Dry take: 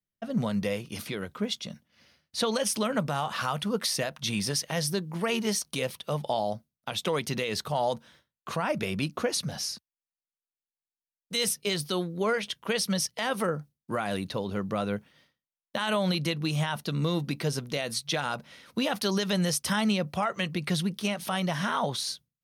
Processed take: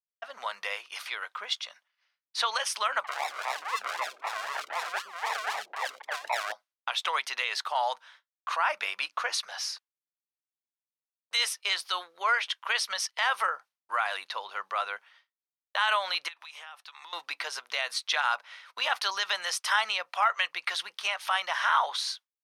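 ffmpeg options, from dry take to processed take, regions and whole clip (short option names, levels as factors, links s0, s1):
-filter_complex "[0:a]asettb=1/sr,asplit=3[s0][s1][s2];[s0]atrim=end=3.044[s3];[s1]atrim=start=3.04:end=6.52,asetpts=PTS-STARTPTS,afade=t=in:d=0.004:c=qsin,afade=t=out:st=3.476:d=0.004:c=qsin,acrusher=samples=40:mix=1:aa=0.000001:lfo=1:lforange=24:lforate=3.9,acrossover=split=350|2700[s4][s5][s6];[s6]adelay=30[s7];[s4]adelay=120[s8];[s8][s5][s7]amix=inputs=3:normalize=0,atrim=end_sample=153468[s9];[s2]atrim=start=6.516[s10];[s3][s9]acrossfade=d=0.004:c1=hsin:c2=qsin[s11];[s11][s10]acrossfade=d=0.004:c1=qsin:c2=hsin,asettb=1/sr,asplit=3[s12][s13][s14];[s12]atrim=end=16.284[s15];[s13]atrim=start=16.28:end=17.13,asetpts=PTS-STARTPTS,afade=t=in:d=0.004:c=qsin,afade=t=out:st=0.846:d=0.004:c=qsin,highpass=510,acompressor=threshold=0.00794:ratio=20:attack=3.2:release=140:knee=1:detection=peak,afreqshift=-150[s16];[s14]atrim=start=17.126[s17];[s15][s16]acrossfade=d=0.004:c1=hsin:c2=qsin[s18];[s18][s17]acrossfade=d=0.004:c1=qsin:c2=hsin,aemphasis=mode=reproduction:type=75fm,agate=range=0.0224:threshold=0.00282:ratio=3:detection=peak,highpass=f=930:w=0.5412,highpass=f=930:w=1.3066,volume=2.37"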